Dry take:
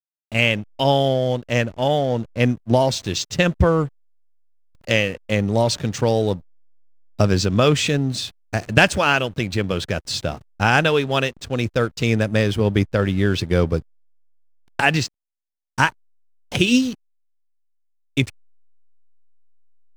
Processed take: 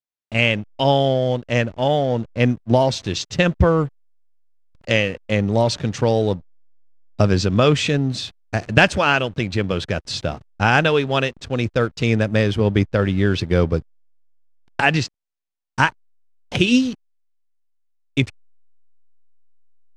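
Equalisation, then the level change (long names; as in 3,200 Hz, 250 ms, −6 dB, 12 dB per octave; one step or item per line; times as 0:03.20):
high-frequency loss of the air 63 metres
+1.0 dB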